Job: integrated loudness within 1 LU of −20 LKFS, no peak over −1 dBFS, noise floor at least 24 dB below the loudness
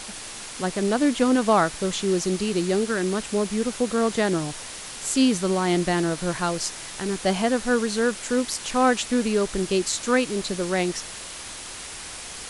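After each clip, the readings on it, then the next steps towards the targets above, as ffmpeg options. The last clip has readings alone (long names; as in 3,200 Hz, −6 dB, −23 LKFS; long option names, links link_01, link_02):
background noise floor −37 dBFS; target noise floor −48 dBFS; integrated loudness −23.5 LKFS; sample peak −7.5 dBFS; target loudness −20.0 LKFS
→ -af "afftdn=noise_reduction=11:noise_floor=-37"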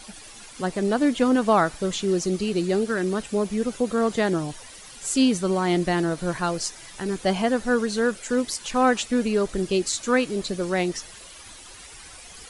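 background noise floor −44 dBFS; target noise floor −48 dBFS
→ -af "afftdn=noise_reduction=6:noise_floor=-44"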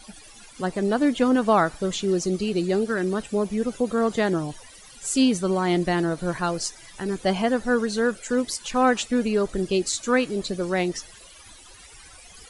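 background noise floor −48 dBFS; integrated loudness −24.0 LKFS; sample peak −8.0 dBFS; target loudness −20.0 LKFS
→ -af "volume=4dB"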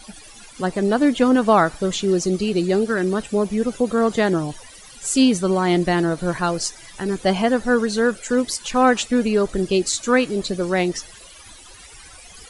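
integrated loudness −20.0 LKFS; sample peak −4.0 dBFS; background noise floor −44 dBFS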